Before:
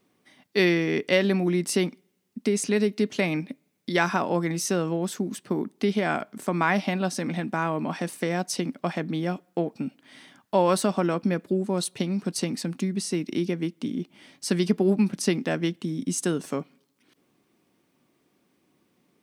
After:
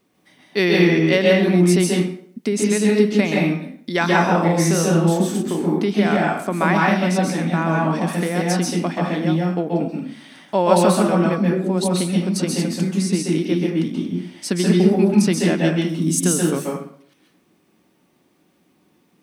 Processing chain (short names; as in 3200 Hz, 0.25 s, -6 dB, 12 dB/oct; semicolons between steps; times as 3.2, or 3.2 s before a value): 4.25–5.72 doubler 36 ms -4.5 dB; 15.89–16.58 high shelf 8600 Hz +12 dB; plate-style reverb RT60 0.58 s, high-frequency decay 0.75×, pre-delay 0.12 s, DRR -2.5 dB; gain +2.5 dB